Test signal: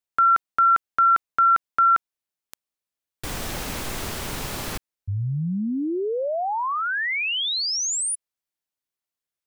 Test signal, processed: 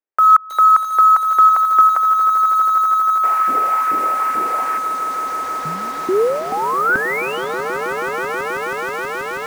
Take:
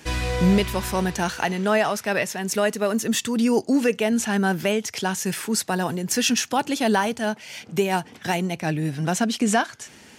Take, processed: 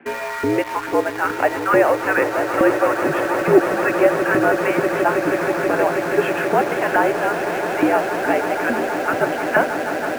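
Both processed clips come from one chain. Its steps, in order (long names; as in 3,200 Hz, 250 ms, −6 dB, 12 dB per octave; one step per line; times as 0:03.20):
single-sideband voice off tune −77 Hz 160–2,400 Hz
auto-filter high-pass saw up 2.3 Hz 260–1,500 Hz
echo that builds up and dies away 161 ms, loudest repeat 8, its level −12 dB
in parallel at −6.5 dB: bit reduction 5 bits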